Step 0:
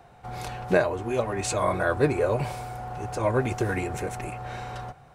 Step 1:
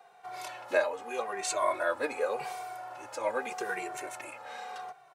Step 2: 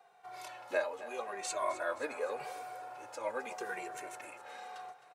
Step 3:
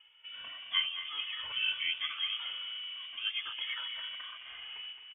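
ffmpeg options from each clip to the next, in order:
ffmpeg -i in.wav -filter_complex "[0:a]highpass=580,asplit=2[link_01][link_02];[link_02]adelay=2.1,afreqshift=-0.84[link_03];[link_01][link_03]amix=inputs=2:normalize=1" out.wav
ffmpeg -i in.wav -af "aecho=1:1:262|524|786|1048|1310:0.178|0.096|0.0519|0.028|0.0151,volume=-6dB" out.wav
ffmpeg -i in.wav -af "lowpass=frequency=3100:width_type=q:width=0.5098,lowpass=frequency=3100:width_type=q:width=0.6013,lowpass=frequency=3100:width_type=q:width=0.9,lowpass=frequency=3100:width_type=q:width=2.563,afreqshift=-3700,aecho=1:1:216|432|648|864|1080:0.282|0.13|0.0596|0.0274|0.0126,volume=1.5dB" out.wav

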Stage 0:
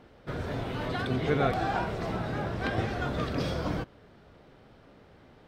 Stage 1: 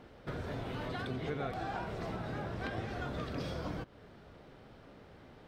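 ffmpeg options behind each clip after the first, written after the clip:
ffmpeg -i in.wav -af "acompressor=threshold=-38dB:ratio=3" out.wav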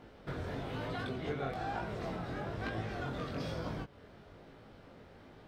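ffmpeg -i in.wav -af "flanger=delay=18:depth=5.1:speed=1.1,volume=3dB" out.wav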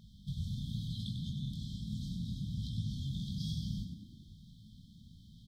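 ffmpeg -i in.wav -filter_complex "[0:a]afftfilt=real='re*(1-between(b*sr/4096,220,3100))':imag='im*(1-between(b*sr/4096,220,3100))':win_size=4096:overlap=0.75,asplit=6[link_01][link_02][link_03][link_04][link_05][link_06];[link_02]adelay=97,afreqshift=31,volume=-7dB[link_07];[link_03]adelay=194,afreqshift=62,volume=-14.3dB[link_08];[link_04]adelay=291,afreqshift=93,volume=-21.7dB[link_09];[link_05]adelay=388,afreqshift=124,volume=-29dB[link_10];[link_06]adelay=485,afreqshift=155,volume=-36.3dB[link_11];[link_01][link_07][link_08][link_09][link_10][link_11]amix=inputs=6:normalize=0,volume=3.5dB" out.wav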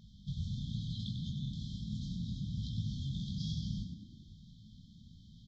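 ffmpeg -i in.wav -af "aresample=16000,aresample=44100" out.wav

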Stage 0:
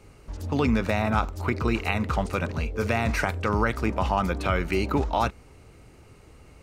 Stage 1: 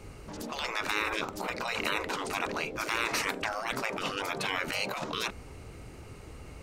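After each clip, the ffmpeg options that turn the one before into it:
ffmpeg -i in.wav -af "afftfilt=real='re*lt(hypot(re,im),0.0891)':imag='im*lt(hypot(re,im),0.0891)':win_size=1024:overlap=0.75,volume=4.5dB" out.wav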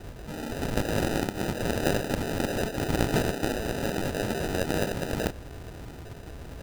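ffmpeg -i in.wav -af "acrusher=samples=40:mix=1:aa=0.000001,volume=5dB" out.wav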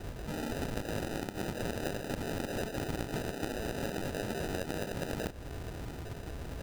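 ffmpeg -i in.wav -af "acompressor=threshold=-32dB:ratio=6" out.wav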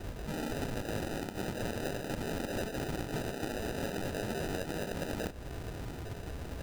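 ffmpeg -i in.wav -filter_complex "[0:a]asplit=2[link_01][link_02];[link_02]aeval=exprs='0.0355*(abs(mod(val(0)/0.0355+3,4)-2)-1)':channel_layout=same,volume=-8.5dB[link_03];[link_01][link_03]amix=inputs=2:normalize=0,flanger=delay=3.1:depth=8.4:regen=-75:speed=0.39:shape=triangular,volume=2dB" out.wav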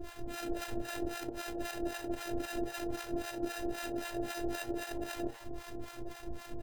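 ffmpeg -i in.wav -filter_complex "[0:a]afftfilt=real='hypot(re,im)*cos(PI*b)':imag='0':win_size=512:overlap=0.75,asplit=6[link_01][link_02][link_03][link_04][link_05][link_06];[link_02]adelay=85,afreqshift=120,volume=-15.5dB[link_07];[link_03]adelay=170,afreqshift=240,volume=-20.9dB[link_08];[link_04]adelay=255,afreqshift=360,volume=-26.2dB[link_09];[link_05]adelay=340,afreqshift=480,volume=-31.6dB[link_10];[link_06]adelay=425,afreqshift=600,volume=-36.9dB[link_11];[link_01][link_07][link_08][link_09][link_10][link_11]amix=inputs=6:normalize=0,acrossover=split=720[link_12][link_13];[link_12]aeval=exprs='val(0)*(1-1/2+1/2*cos(2*PI*3.8*n/s))':channel_layout=same[link_14];[link_13]aeval=exprs='val(0)*(1-1/2-1/2*cos(2*PI*3.8*n/s))':channel_layout=same[link_15];[link_14][link_15]amix=inputs=2:normalize=0,volume=6.5dB" out.wav

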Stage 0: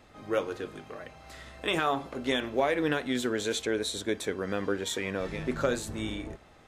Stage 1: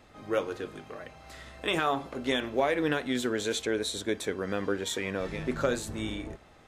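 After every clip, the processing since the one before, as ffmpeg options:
ffmpeg -i in.wav -af anull out.wav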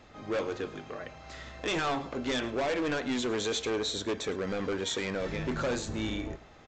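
ffmpeg -i in.wav -af "aresample=16000,volume=29dB,asoftclip=hard,volume=-29dB,aresample=44100,aecho=1:1:108:0.112,volume=2dB" out.wav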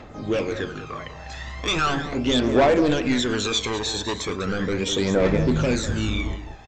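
ffmpeg -i in.wav -filter_complex "[0:a]asplit=2[link_01][link_02];[link_02]adelay=198.3,volume=-9dB,highshelf=frequency=4000:gain=-4.46[link_03];[link_01][link_03]amix=inputs=2:normalize=0,aphaser=in_gain=1:out_gain=1:delay=1.2:decay=0.61:speed=0.38:type=triangular,volume=6dB" out.wav

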